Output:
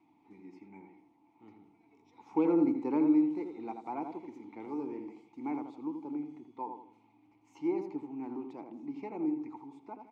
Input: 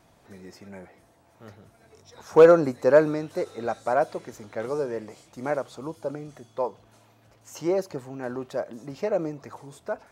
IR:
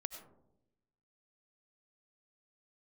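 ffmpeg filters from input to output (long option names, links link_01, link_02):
-filter_complex "[0:a]asplit=3[link_01][link_02][link_03];[link_01]bandpass=frequency=300:width_type=q:width=8,volume=0dB[link_04];[link_02]bandpass=frequency=870:width_type=q:width=8,volume=-6dB[link_05];[link_03]bandpass=frequency=2240:width_type=q:width=8,volume=-9dB[link_06];[link_04][link_05][link_06]amix=inputs=3:normalize=0,asplit=2[link_07][link_08];[link_08]adelay=82,lowpass=frequency=1400:poles=1,volume=-5.5dB,asplit=2[link_09][link_10];[link_10]adelay=82,lowpass=frequency=1400:poles=1,volume=0.39,asplit=2[link_11][link_12];[link_12]adelay=82,lowpass=frequency=1400:poles=1,volume=0.39,asplit=2[link_13][link_14];[link_14]adelay=82,lowpass=frequency=1400:poles=1,volume=0.39,asplit=2[link_15][link_16];[link_16]adelay=82,lowpass=frequency=1400:poles=1,volume=0.39[link_17];[link_07][link_09][link_11][link_13][link_15][link_17]amix=inputs=6:normalize=0,acrossover=split=490[link_18][link_19];[link_19]acompressor=threshold=-39dB:ratio=6[link_20];[link_18][link_20]amix=inputs=2:normalize=0,volume=3.5dB"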